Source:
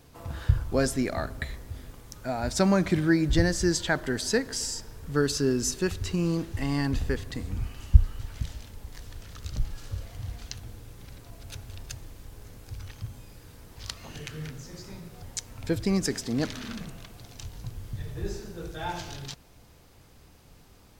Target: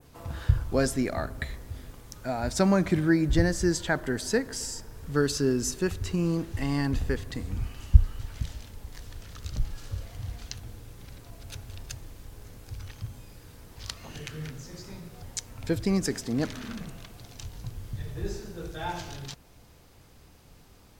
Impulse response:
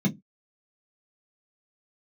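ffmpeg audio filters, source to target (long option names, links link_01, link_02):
-af "adynamicequalizer=threshold=0.00447:dfrequency=4200:dqfactor=0.76:tfrequency=4200:tqfactor=0.76:attack=5:release=100:ratio=0.375:range=2.5:mode=cutabove:tftype=bell"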